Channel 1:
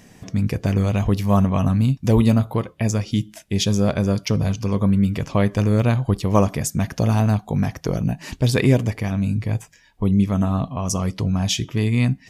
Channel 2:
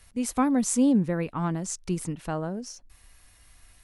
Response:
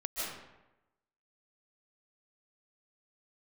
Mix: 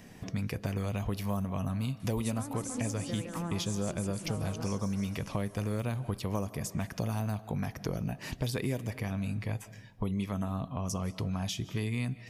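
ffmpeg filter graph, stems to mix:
-filter_complex "[0:a]equalizer=f=6.9k:w=1.5:g=-5,volume=-3.5dB,asplit=2[a][b];[b]volume=-23.5dB[c];[1:a]acompressor=threshold=-27dB:ratio=6,adelay=2000,volume=-2.5dB,asplit=2[d][e];[e]volume=-4dB[f];[2:a]atrim=start_sample=2205[g];[c][g]afir=irnorm=-1:irlink=0[h];[f]aecho=0:1:158|316|474|632|790|948|1106|1264:1|0.55|0.303|0.166|0.0915|0.0503|0.0277|0.0152[i];[a][d][h][i]amix=inputs=4:normalize=0,acrossover=split=510|6500[j][k][l];[j]acompressor=threshold=-33dB:ratio=4[m];[k]acompressor=threshold=-40dB:ratio=4[n];[l]acompressor=threshold=-43dB:ratio=4[o];[m][n][o]amix=inputs=3:normalize=0"

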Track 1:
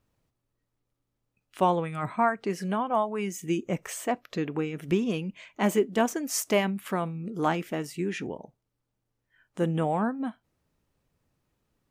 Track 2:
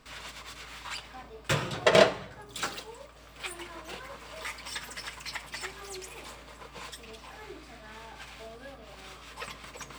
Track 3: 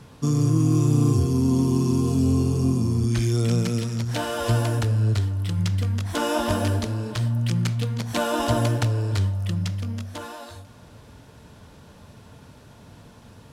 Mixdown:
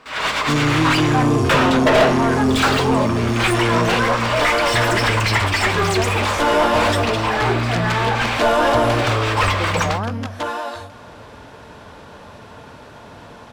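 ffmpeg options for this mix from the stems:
-filter_complex "[0:a]volume=-12dB[a];[1:a]dynaudnorm=f=130:g=3:m=16dB,volume=-3dB[b];[2:a]adelay=250,volume=-3dB[c];[a][b][c]amix=inputs=3:normalize=0,asplit=2[d][e];[e]highpass=f=720:p=1,volume=26dB,asoftclip=type=tanh:threshold=-4dB[f];[d][f]amix=inputs=2:normalize=0,lowpass=f=1.4k:p=1,volume=-6dB,asubboost=boost=2.5:cutoff=78"

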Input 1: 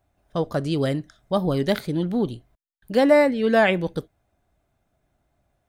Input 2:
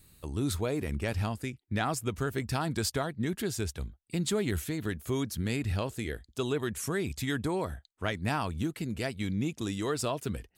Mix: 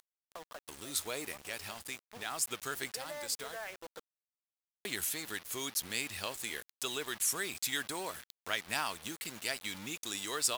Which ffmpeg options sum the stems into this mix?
-filter_complex "[0:a]equalizer=f=5.2k:t=o:w=2.2:g=5.5,acompressor=threshold=-26dB:ratio=5,acrossover=split=390 2300:gain=0.1 1 0.1[a][b][c];[a][b][c]amix=inputs=3:normalize=0,volume=-9dB,afade=t=in:st=1.84:d=0.52:silence=0.446684,asplit=2[d][e];[1:a]highshelf=f=3k:g=9,aeval=exprs='val(0)*gte(abs(val(0)),0.00944)':c=same,adelay=450,volume=-1dB,asplit=3[f][g][h];[f]atrim=end=3.58,asetpts=PTS-STARTPTS,afade=t=out:st=3.576:d=0.004:c=hsin[i];[g]atrim=start=3.58:end=4.85,asetpts=PTS-STARTPTS,volume=0[j];[h]atrim=start=4.85,asetpts=PTS-STARTPTS,afade=t=in:d=0.004:c=hsin[k];[i][j][k]concat=n=3:v=0:a=1[l];[e]apad=whole_len=486387[m];[l][m]sidechaincompress=threshold=-51dB:ratio=3:attack=16:release=408[n];[d][n]amix=inputs=2:normalize=0,acompressor=mode=upward:threshold=-33dB:ratio=2.5,highpass=f=1.2k:p=1,acrusher=bits=7:mix=0:aa=0.000001"

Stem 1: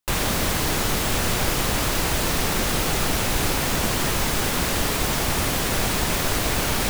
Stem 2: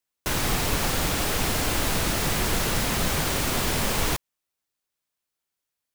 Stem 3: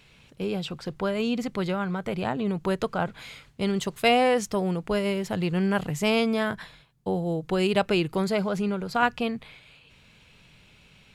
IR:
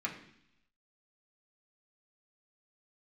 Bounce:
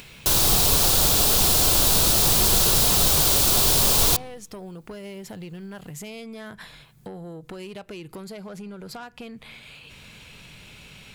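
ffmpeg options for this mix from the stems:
-filter_complex "[1:a]equalizer=f=250:t=o:w=1:g=-6,equalizer=f=2k:t=o:w=1:g=-12,equalizer=f=4k:t=o:w=1:g=6,volume=3dB,asplit=2[a][b];[b]volume=-15dB[c];[2:a]acompressor=threshold=-30dB:ratio=8,asoftclip=type=tanh:threshold=-28.5dB,volume=-4.5dB,asplit=2[d][e];[e]volume=-23dB[f];[3:a]atrim=start_sample=2205[g];[c][f]amix=inputs=2:normalize=0[h];[h][g]afir=irnorm=-1:irlink=0[i];[a][d][i]amix=inputs=3:normalize=0,highshelf=f=8k:g=9.5,acompressor=mode=upward:threshold=-33dB:ratio=2.5"

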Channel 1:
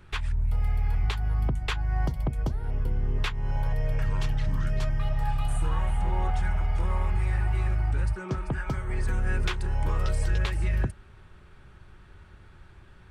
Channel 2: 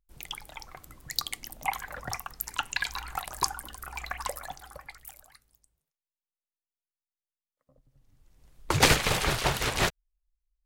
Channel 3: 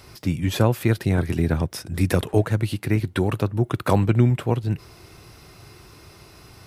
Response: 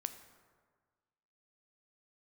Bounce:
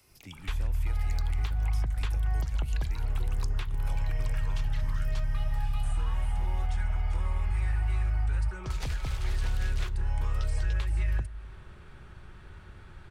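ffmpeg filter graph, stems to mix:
-filter_complex "[0:a]adynamicequalizer=threshold=0.00355:dfrequency=1600:dqfactor=0.7:tfrequency=1600:tqfactor=0.7:attack=5:release=100:ratio=0.375:range=2:mode=cutabove:tftype=highshelf,adelay=350,volume=-0.5dB,asplit=2[a][b];[b]volume=-5.5dB[c];[1:a]volume=-15dB,asplit=2[d][e];[e]volume=-3dB[f];[2:a]aexciter=amount=1.2:drive=7.4:freq=2.2k,volume=-19dB[g];[3:a]atrim=start_sample=2205[h];[c][f]amix=inputs=2:normalize=0[i];[i][h]afir=irnorm=-1:irlink=0[j];[a][d][g][j]amix=inputs=4:normalize=0,acrossover=split=94|670|2200|7300[k][l][m][n][o];[k]acompressor=threshold=-25dB:ratio=4[p];[l]acompressor=threshold=-48dB:ratio=4[q];[m]acompressor=threshold=-48dB:ratio=4[r];[n]acompressor=threshold=-46dB:ratio=4[s];[o]acompressor=threshold=-59dB:ratio=4[t];[p][q][r][s][t]amix=inputs=5:normalize=0"

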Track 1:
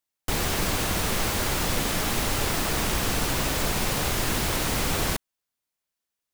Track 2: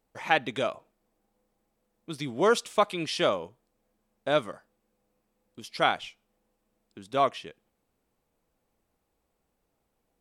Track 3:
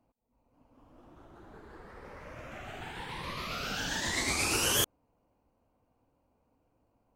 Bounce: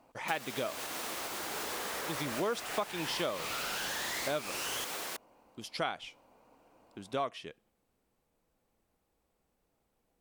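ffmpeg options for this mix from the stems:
-filter_complex "[0:a]highpass=460,alimiter=limit=-20.5dB:level=0:latency=1:release=209,volume=-8dB[a];[1:a]volume=-1dB,asplit=2[b][c];[2:a]asplit=2[d][e];[e]highpass=f=720:p=1,volume=36dB,asoftclip=type=tanh:threshold=-15.5dB[f];[d][f]amix=inputs=2:normalize=0,lowpass=f=6.1k:p=1,volume=-6dB,volume=-14.5dB[g];[c]apad=whole_len=315700[h];[g][h]sidechaincompress=threshold=-26dB:ratio=8:attack=16:release=151[i];[a][b][i]amix=inputs=3:normalize=0,acompressor=threshold=-33dB:ratio=3"

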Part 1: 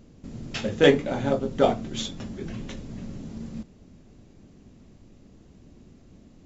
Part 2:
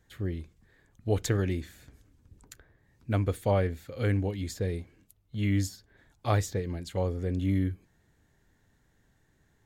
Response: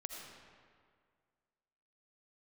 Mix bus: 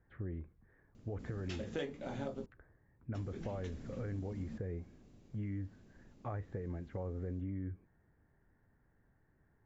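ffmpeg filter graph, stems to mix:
-filter_complex "[0:a]adelay=950,volume=-9.5dB,asplit=3[a][b][c];[a]atrim=end=2.46,asetpts=PTS-STARTPTS,afade=t=out:st=2.456:d=0.004:c=hsin[d];[b]atrim=start=2.46:end=3.14,asetpts=PTS-STARTPTS,volume=0[e];[c]atrim=start=3.14,asetpts=PTS-STARTPTS,afade=t=in:d=0.004:c=hsin[f];[d][e][f]concat=n=3:v=0:a=1[g];[1:a]lowpass=f=1.8k:w=0.5412,lowpass=f=1.8k:w=1.3066,alimiter=level_in=1dB:limit=-24dB:level=0:latency=1,volume=-1dB,volume=-4dB[h];[g][h]amix=inputs=2:normalize=0,acompressor=threshold=-37dB:ratio=6"

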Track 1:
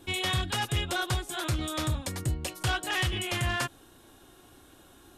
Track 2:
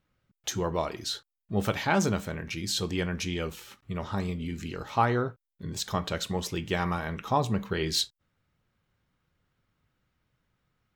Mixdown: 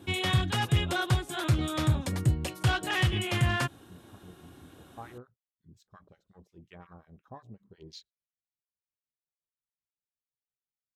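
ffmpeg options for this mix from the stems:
-filter_complex "[0:a]highpass=98,bass=f=250:g=8,treble=f=4k:g=-5,volume=0.5dB[a];[1:a]afwtdn=0.0251,bandreject=f=890:w=12,acrossover=split=1100[b][c];[b]aeval=exprs='val(0)*(1-1/2+1/2*cos(2*PI*5.6*n/s))':c=same[d];[c]aeval=exprs='val(0)*(1-1/2-1/2*cos(2*PI*5.6*n/s))':c=same[e];[d][e]amix=inputs=2:normalize=0,volume=-16.5dB[f];[a][f]amix=inputs=2:normalize=0"

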